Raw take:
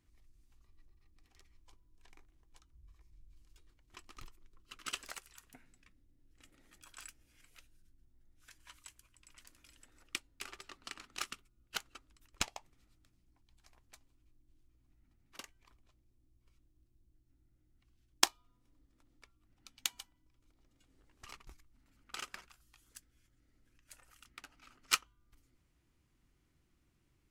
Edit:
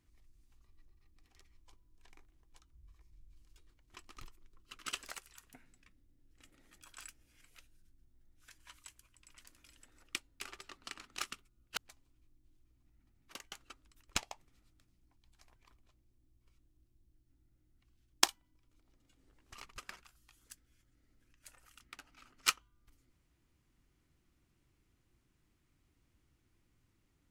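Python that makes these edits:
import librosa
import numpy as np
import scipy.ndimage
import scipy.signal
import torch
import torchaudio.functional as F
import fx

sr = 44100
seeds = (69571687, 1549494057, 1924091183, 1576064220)

y = fx.edit(x, sr, fx.move(start_s=13.81, length_s=1.75, to_s=11.77),
    fx.cut(start_s=18.28, length_s=1.71),
    fx.cut(start_s=21.49, length_s=0.74), tone=tone)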